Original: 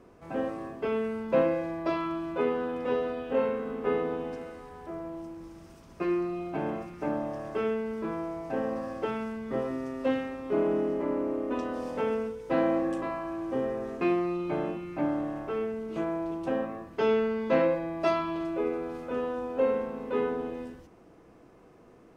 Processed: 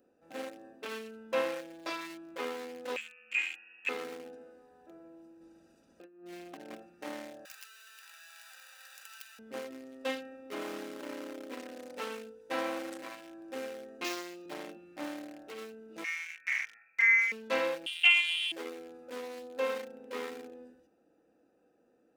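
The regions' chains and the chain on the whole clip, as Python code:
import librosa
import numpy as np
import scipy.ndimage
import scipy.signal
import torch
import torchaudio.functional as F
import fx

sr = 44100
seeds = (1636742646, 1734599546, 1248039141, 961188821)

y = fx.chain(x, sr, fx.low_shelf(hz=500.0, db=-11.5),
    fx.freq_invert(carrier_hz=3000), at=(2.96, 3.89))
y = fx.chain(y, sr, fx.env_lowpass_down(base_hz=1900.0, full_db=-25.5),
    fx.over_compress(threshold_db=-33.0, ratio=-0.5), at=(5.41, 6.75))
y = fx.chain(y, sr, fx.clip_1bit(),
    fx.highpass(hz=1200.0, slope=24), at=(7.45, 9.39))
y = fx.chain(y, sr, fx.cvsd(bps=32000),
    fx.highpass(hz=220.0, slope=12),
    fx.quant_companded(bits=8), at=(14.04, 14.46))
y = fx.chain(y, sr, fx.freq_invert(carrier_hz=2500),
    fx.peak_eq(hz=670.0, db=-7.0, octaves=2.1), at=(16.04, 17.32))
y = fx.chain(y, sr, fx.freq_invert(carrier_hz=3400),
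    fx.peak_eq(hz=68.0, db=10.0, octaves=1.7), at=(17.86, 18.52))
y = fx.wiener(y, sr, points=41)
y = np.diff(y, prepend=0.0)
y = y + 0.43 * np.pad(y, (int(3.8 * sr / 1000.0), 0))[:len(y)]
y = y * 10.0 ** (13.5 / 20.0)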